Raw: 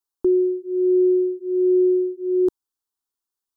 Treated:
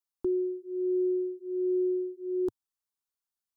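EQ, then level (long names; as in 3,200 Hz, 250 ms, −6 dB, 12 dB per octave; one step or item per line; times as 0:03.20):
dynamic equaliser 110 Hz, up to +4 dB, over −41 dBFS, Q 1.5
parametric band 380 Hz −5.5 dB 0.78 octaves
−5.5 dB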